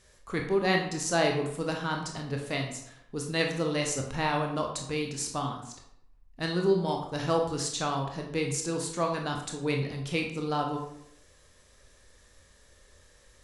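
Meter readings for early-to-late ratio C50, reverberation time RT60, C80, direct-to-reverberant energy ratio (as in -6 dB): 5.5 dB, 0.75 s, 9.0 dB, 1.5 dB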